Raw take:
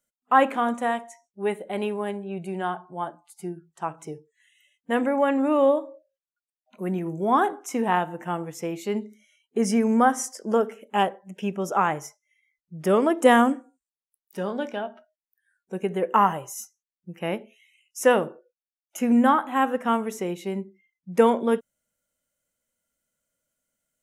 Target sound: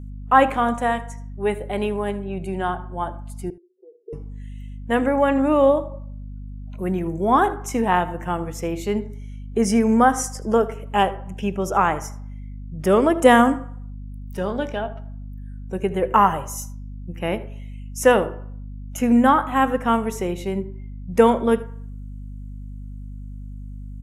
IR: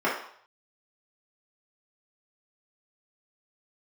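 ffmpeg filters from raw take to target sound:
-filter_complex "[0:a]asplit=2[link_01][link_02];[1:a]atrim=start_sample=2205,adelay=84[link_03];[link_02][link_03]afir=irnorm=-1:irlink=0,volume=-34.5dB[link_04];[link_01][link_04]amix=inputs=2:normalize=0,aeval=exprs='val(0)+0.0141*(sin(2*PI*50*n/s)+sin(2*PI*2*50*n/s)/2+sin(2*PI*3*50*n/s)/3+sin(2*PI*4*50*n/s)/4+sin(2*PI*5*50*n/s)/5)':channel_layout=same,asettb=1/sr,asplit=3[link_05][link_06][link_07];[link_05]atrim=end=3.504[link_08];[link_06]atrim=start=3.5:end=4.13,asetpts=PTS-STARTPTS,afade=type=in:duration=0.004:curve=qsin,afade=type=out:start_time=0.626:duration=0.004:curve=qsin,asuperpass=centerf=420:order=8:qfactor=3.6[link_09];[link_07]atrim=start=4.126[link_10];[link_08][link_09]acrossfade=duration=0.004:curve1=hsin:curve2=qsin[link_11];[link_11][link_10]acrossfade=duration=0.004:curve1=qsin:curve2=hsin,aecho=1:1:78:0.1,volume=3.5dB"

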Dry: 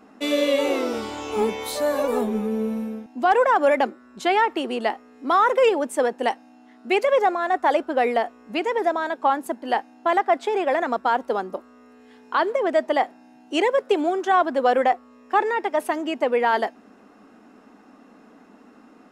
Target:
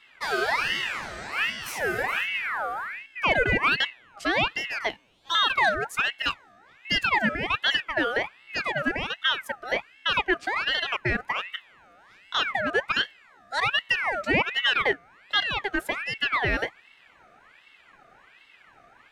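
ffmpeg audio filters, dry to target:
ffmpeg -i in.wav -filter_complex "[0:a]asettb=1/sr,asplit=3[link_01][link_02][link_03];[link_01]atrim=end=4.894[link_04];[link_02]atrim=start=4.89:end=5.35,asetpts=PTS-STARTPTS,afade=type=in:duration=0.004:curve=qsin,afade=type=out:start_time=0.456:duration=0.004:curve=qsin,highpass=frequency=1600:width_type=q:width=1.6[link_05];[link_03]atrim=start=5.346[link_06];[link_04][link_05]acrossfade=duration=0.004:curve1=hsin:curve2=qsin[link_07];[link_07][link_06]acrossfade=duration=0.004:curve1=qsin:curve2=hsin,aeval=exprs='val(0)*sin(2*PI*1700*n/s+1700*0.45/1.3*sin(2*PI*1.3*n/s))':channel_layout=same,volume=-2dB" out.wav

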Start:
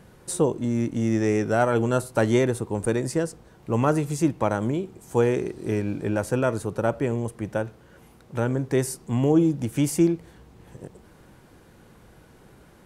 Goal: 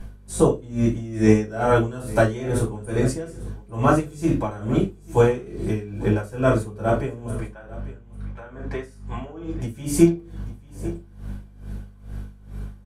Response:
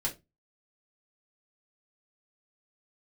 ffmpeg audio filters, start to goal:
-filter_complex "[0:a]asettb=1/sr,asplit=3[link_01][link_02][link_03];[link_01]atrim=end=7.404[link_04];[link_02]atrim=start=7.4:end=9.6,asetpts=PTS-STARTPTS,afade=type=in:duration=0.004:curve=qsin,afade=type=out:start_time=2.196:duration=0.004:curve=qsin,bandpass=frequency=1400:width_type=q:width=0.75:csg=0[link_05];[link_03]atrim=start=9.596[link_06];[link_04][link_05]acrossfade=duration=0.004:curve1=hsin:curve2=qsin[link_07];[link_07][link_06]acrossfade=duration=0.004:curve1=qsin:curve2=hsin,aeval=exprs='val(0)+0.00891*(sin(2*PI*50*n/s)+sin(2*PI*2*50*n/s)/2+sin(2*PI*3*50*n/s)/3+sin(2*PI*4*50*n/s)/4+sin(2*PI*5*50*n/s)/5)':channel_layout=same,asplit=2[link_08][link_09];[link_09]adelay=41,volume=-10.5dB[link_10];[link_08][link_10]amix=inputs=2:normalize=0,aecho=1:1:846:0.126[link_11];[1:a]atrim=start_sample=2205,asetrate=33516,aresample=44100[link_12];[link_11][link_12]afir=irnorm=-1:irlink=0,aeval=exprs='val(0)*pow(10,-18*(0.5-0.5*cos(2*PI*2.3*n/s))/20)':channel_layout=same"

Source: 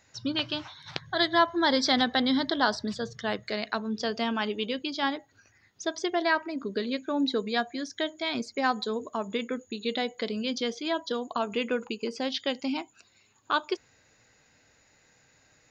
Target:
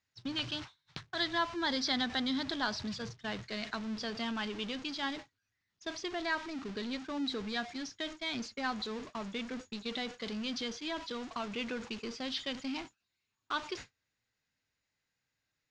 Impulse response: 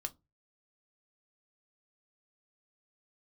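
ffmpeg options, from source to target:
-af "aeval=exprs='val(0)+0.5*0.0335*sgn(val(0))':channel_layout=same,agate=range=-40dB:threshold=-31dB:ratio=16:detection=peak,lowpass=frequency=6000:width=0.5412,lowpass=frequency=6000:width=1.3066,equalizer=frequency=540:width_type=o:width=1.8:gain=-7,volume=-7.5dB"

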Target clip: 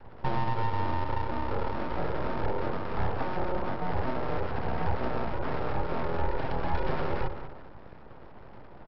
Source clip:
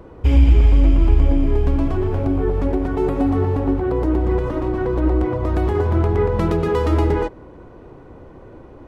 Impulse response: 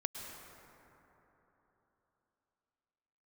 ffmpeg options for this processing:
-filter_complex "[0:a]asplit=2[link_01][link_02];[link_02]adelay=195,lowpass=frequency=2000:poles=1,volume=-12.5dB,asplit=2[link_03][link_04];[link_04]adelay=195,lowpass=frequency=2000:poles=1,volume=0.31,asplit=2[link_05][link_06];[link_06]adelay=195,lowpass=frequency=2000:poles=1,volume=0.31[link_07];[link_03][link_05][link_07]amix=inputs=3:normalize=0[link_08];[link_01][link_08]amix=inputs=2:normalize=0,alimiter=limit=-11.5dB:level=0:latency=1:release=297,aeval=exprs='val(0)*sin(2*PI*480*n/s)':channel_layout=same,lowshelf=frequency=180:gain=12,afreqshift=-24,adynamicequalizer=threshold=0.0178:dfrequency=230:dqfactor=0.9:tfrequency=230:tqfactor=0.9:attack=5:release=100:ratio=0.375:range=3:mode=cutabove:tftype=bell,aresample=11025,aeval=exprs='abs(val(0))':channel_layout=same,aresample=44100,volume=-6.5dB"

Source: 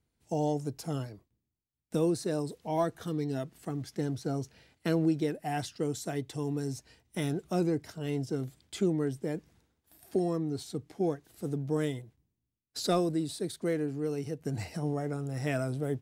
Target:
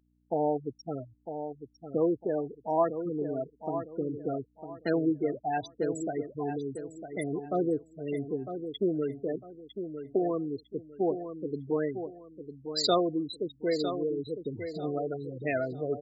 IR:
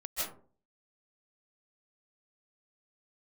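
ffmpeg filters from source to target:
-filter_complex "[0:a]afftfilt=real='re*gte(hypot(re,im),0.0355)':imag='im*gte(hypot(re,im),0.0355)':win_size=1024:overlap=0.75,aeval=exprs='val(0)+0.000794*(sin(2*PI*60*n/s)+sin(2*PI*2*60*n/s)/2+sin(2*PI*3*60*n/s)/3+sin(2*PI*4*60*n/s)/4+sin(2*PI*5*60*n/s)/5)':channel_layout=same,bass=frequency=250:gain=-14,treble=frequency=4000:gain=10,asplit=2[link_01][link_02];[link_02]adelay=953,lowpass=frequency=4700:poles=1,volume=-9dB,asplit=2[link_03][link_04];[link_04]adelay=953,lowpass=frequency=4700:poles=1,volume=0.29,asplit=2[link_05][link_06];[link_06]adelay=953,lowpass=frequency=4700:poles=1,volume=0.29[link_07];[link_03][link_05][link_07]amix=inputs=3:normalize=0[link_08];[link_01][link_08]amix=inputs=2:normalize=0,volume=4.5dB"

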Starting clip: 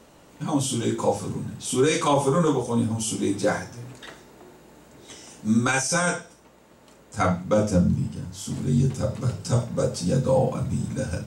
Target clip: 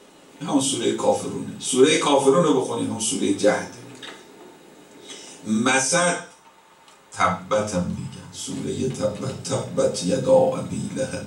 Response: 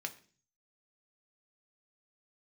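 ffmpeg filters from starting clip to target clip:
-filter_complex "[0:a]asettb=1/sr,asplit=3[link_01][link_02][link_03];[link_01]atrim=end=6.164[link_04];[link_02]atrim=start=6.16:end=8.33,asetpts=PTS-STARTPTS,afade=type=in:duration=0.004:curve=qsin,afade=type=out:start_time=2.166:duration=0.004:curve=qsin,equalizer=frequency=250:width_type=o:width=1:gain=-9,equalizer=frequency=500:width_type=o:width=1:gain=-6,equalizer=frequency=1000:width_type=o:width=1:gain=6[link_05];[link_03]atrim=start=8.326[link_06];[link_04][link_05]acrossfade=duration=0.004:curve1=hsin:curve2=qsin[link_07];[link_07][link_06]acrossfade=duration=0.004:curve1=qsin:curve2=hsin[link_08];[1:a]atrim=start_sample=2205,asetrate=66150,aresample=44100[link_09];[link_08][link_09]afir=irnorm=-1:irlink=0,volume=8.5dB"

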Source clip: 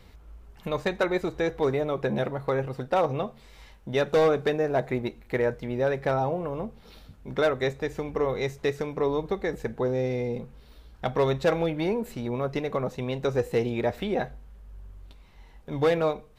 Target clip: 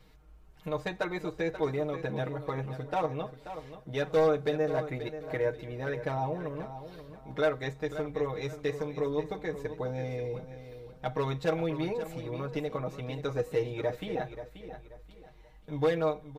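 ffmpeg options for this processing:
ffmpeg -i in.wav -af "aecho=1:1:6.5:0.89,aecho=1:1:533|1066|1599:0.266|0.0851|0.0272,volume=-8.5dB" out.wav

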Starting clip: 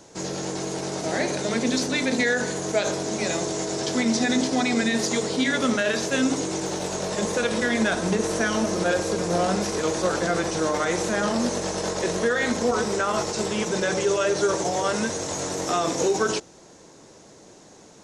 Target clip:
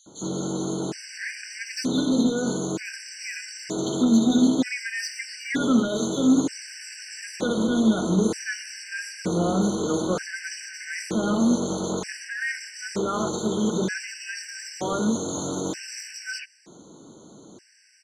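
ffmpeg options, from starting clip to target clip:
ffmpeg -i in.wav -filter_complex "[0:a]asplit=2[link_01][link_02];[link_02]highpass=frequency=720:poles=1,volume=11dB,asoftclip=type=tanh:threshold=-10.5dB[link_03];[link_01][link_03]amix=inputs=2:normalize=0,lowpass=frequency=2700:poles=1,volume=-6dB,equalizer=frequency=250:width=0.57:gain=11,acrossover=split=320[link_04][link_05];[link_04]acontrast=37[link_06];[link_05]tiltshelf=frequency=1400:gain=-8.5[link_07];[link_06][link_07]amix=inputs=2:normalize=0,acrossover=split=3200[link_08][link_09];[link_08]adelay=60[link_10];[link_10][link_09]amix=inputs=2:normalize=0,afftfilt=real='re*gt(sin(2*PI*0.54*pts/sr)*(1-2*mod(floor(b*sr/1024/1500),2)),0)':imag='im*gt(sin(2*PI*0.54*pts/sr)*(1-2*mod(floor(b*sr/1024/1500),2)),0)':win_size=1024:overlap=0.75,volume=-6.5dB" out.wav

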